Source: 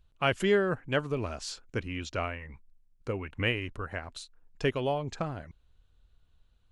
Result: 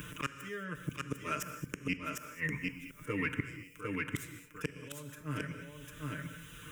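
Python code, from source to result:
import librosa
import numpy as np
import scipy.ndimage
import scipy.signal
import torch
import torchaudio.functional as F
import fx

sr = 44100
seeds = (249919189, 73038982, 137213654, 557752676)

y = fx.tracing_dist(x, sr, depth_ms=0.14)
y = scipy.signal.sosfilt(scipy.signal.butter(2, 130.0, 'highpass', fs=sr, output='sos'), y)
y = fx.high_shelf(y, sr, hz=2900.0, db=8.5)
y = y + 0.96 * np.pad(y, (int(6.6 * sr / 1000.0), 0))[:len(y)]
y = fx.auto_swell(y, sr, attack_ms=733.0)
y = fx.rider(y, sr, range_db=4, speed_s=2.0)
y = fx.gate_flip(y, sr, shuts_db=-31.0, range_db=-31)
y = fx.fixed_phaser(y, sr, hz=1800.0, stages=4)
y = y + 10.0 ** (-5.0 / 20.0) * np.pad(y, (int(751 * sr / 1000.0), 0))[:len(y)]
y = fx.rev_gated(y, sr, seeds[0], gate_ms=240, shape='flat', drr_db=9.5)
y = fx.band_squash(y, sr, depth_pct=70)
y = F.gain(torch.from_numpy(y), 16.0).numpy()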